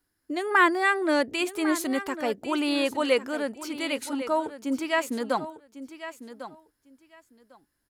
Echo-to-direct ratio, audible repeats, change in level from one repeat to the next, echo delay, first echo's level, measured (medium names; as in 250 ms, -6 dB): -13.0 dB, 2, -15.5 dB, 1100 ms, -13.0 dB